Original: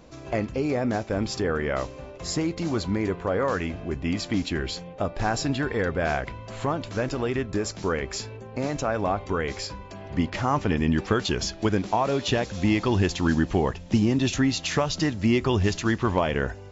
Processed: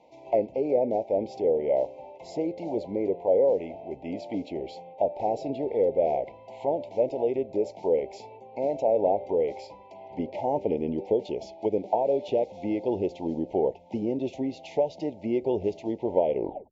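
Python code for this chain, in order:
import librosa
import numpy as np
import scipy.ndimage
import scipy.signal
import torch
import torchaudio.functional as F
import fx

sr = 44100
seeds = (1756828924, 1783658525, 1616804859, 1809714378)

p1 = fx.tape_stop_end(x, sr, length_s=0.37)
p2 = fx.rider(p1, sr, range_db=10, speed_s=2.0)
p3 = p1 + (p2 * 10.0 ** (-1.0 / 20.0))
p4 = fx.auto_wah(p3, sr, base_hz=510.0, top_hz=1100.0, q=2.5, full_db=-14.0, direction='down')
y = scipy.signal.sosfilt(scipy.signal.cheby1(4, 1.0, [910.0, 2100.0], 'bandstop', fs=sr, output='sos'), p4)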